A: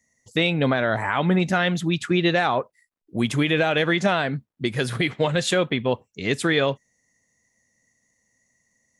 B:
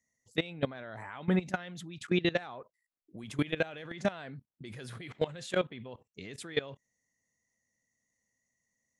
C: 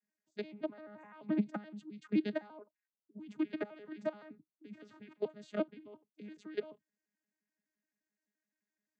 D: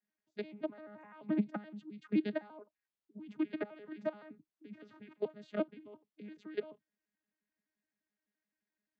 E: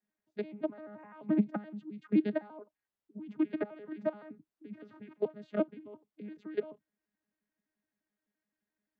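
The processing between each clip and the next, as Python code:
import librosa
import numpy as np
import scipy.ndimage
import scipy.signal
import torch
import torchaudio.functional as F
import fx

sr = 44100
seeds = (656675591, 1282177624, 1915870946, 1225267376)

y1 = fx.level_steps(x, sr, step_db=19)
y1 = F.gain(torch.from_numpy(y1), -6.0).numpy()
y2 = fx.vocoder_arp(y1, sr, chord='bare fifth', root=56, every_ms=86)
y2 = F.gain(torch.from_numpy(y2), -4.0).numpy()
y3 = scipy.signal.sosfilt(scipy.signal.butter(2, 4200.0, 'lowpass', fs=sr, output='sos'), y2)
y4 = fx.high_shelf(y3, sr, hz=2400.0, db=-11.5)
y4 = F.gain(torch.from_numpy(y4), 4.5).numpy()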